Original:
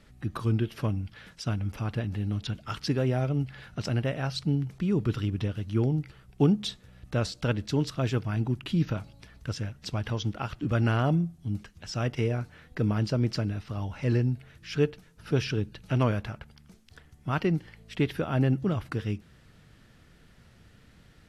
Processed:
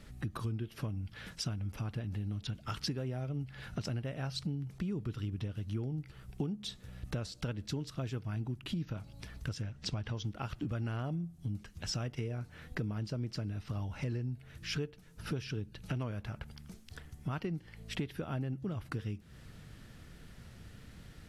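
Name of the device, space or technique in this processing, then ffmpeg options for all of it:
ASMR close-microphone chain: -filter_complex "[0:a]asettb=1/sr,asplit=3[a][b][c];[a]atrim=end=9.624[d];[b]atrim=start=9.62:end=10.16,asetpts=PTS-STARTPTS,afade=t=in:d=0.004:c=qsin,afade=t=out:st=0.536:d=0.004:c=qsin,lowpass=6.9k[e];[c]atrim=start=10.156[f];[d][e]acrossfade=d=0.004:c1=hsin:c2=qsin[g];[g][f]acrossfade=d=0.004:c1=qsin:c2=hsin,lowshelf=f=230:g=4.5,acompressor=threshold=-36dB:ratio=6,highshelf=f=6.4k:g=5.5,volume=1dB"

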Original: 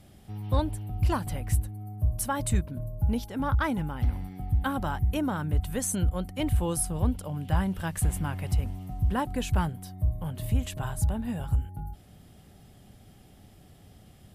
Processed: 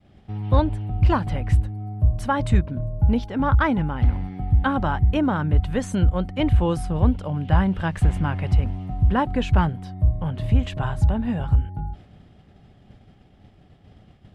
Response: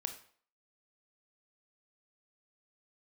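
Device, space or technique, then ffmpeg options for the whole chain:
hearing-loss simulation: -af "lowpass=3.2k,agate=range=-33dB:threshold=-47dB:ratio=3:detection=peak,volume=7.5dB"

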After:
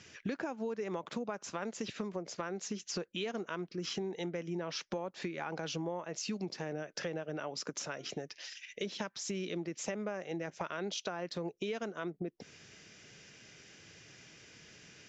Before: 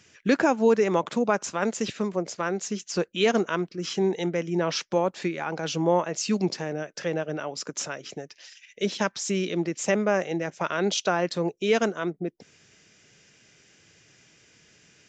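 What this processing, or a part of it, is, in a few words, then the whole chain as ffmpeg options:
serial compression, peaks first: -filter_complex "[0:a]acompressor=threshold=-33dB:ratio=5,acompressor=threshold=-44dB:ratio=1.5,asettb=1/sr,asplit=3[a][b][c];[a]atrim=end=7.784[d];[b]atrim=start=7.78:end=8.22,asetpts=PTS-STARTPTS,afade=t=in:d=0.004:c=qsin,afade=t=out:st=0.436:d=0.004:c=qsin,bandreject=f=351:t=h:w=4,bandreject=f=702:t=h:w=4,bandreject=f=1.053k:t=h:w=4,bandreject=f=1.404k:t=h:w=4,bandreject=f=1.755k:t=h:w=4,bandreject=f=2.106k:t=h:w=4,bandreject=f=2.457k:t=h:w=4,bandreject=f=2.808k:t=h:w=4,bandreject=f=3.159k:t=h:w=4,bandreject=f=3.51k:t=h:w=4,bandreject=f=3.861k:t=h:w=4,bandreject=f=4.212k:t=h:w=4[e];[c]atrim=start=8.216[f];[d][e]acrossfade=d=0.004:c1=hsin:c2=qsin[g];[g][f]acrossfade=d=0.004:c1=qsin:c2=hsin,lowpass=f=6.7k:w=0.5412,lowpass=f=6.7k:w=1.3066,volume=2dB"

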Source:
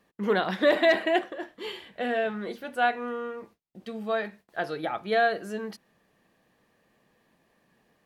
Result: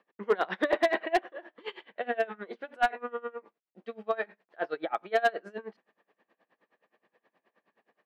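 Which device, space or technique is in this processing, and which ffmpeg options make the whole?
helicopter radio: -af "highpass=380,lowpass=2.5k,aeval=exprs='val(0)*pow(10,-24*(0.5-0.5*cos(2*PI*9.5*n/s))/20)':c=same,asoftclip=type=hard:threshold=-20.5dB,volume=4dB"

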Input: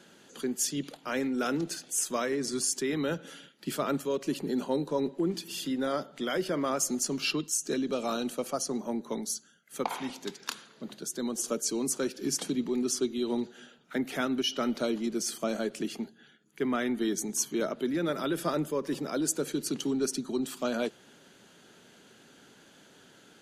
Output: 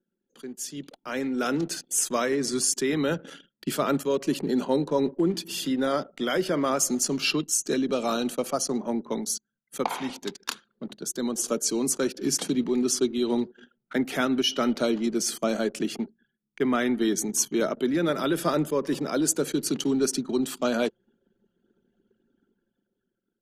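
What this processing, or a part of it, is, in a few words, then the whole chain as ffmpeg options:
voice memo with heavy noise removal: -af "anlmdn=0.0251,dynaudnorm=f=180:g=13:m=13.5dB,volume=-7.5dB"

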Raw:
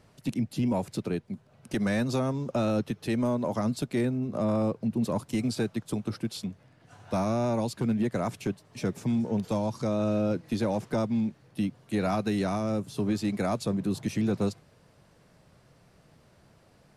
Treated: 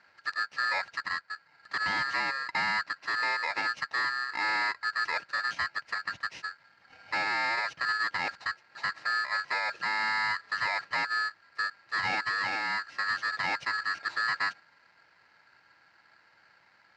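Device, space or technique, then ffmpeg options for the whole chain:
ring modulator pedal into a guitar cabinet: -af "aeval=exprs='val(0)*sgn(sin(2*PI*1500*n/s))':c=same,highpass=100,equalizer=f=240:t=q:w=4:g=-7,equalizer=f=410:t=q:w=4:g=-6,equalizer=f=1.2k:t=q:w=4:g=-7,equalizer=f=3.4k:t=q:w=4:g=-9,lowpass=f=4.5k:w=0.5412,lowpass=f=4.5k:w=1.3066"

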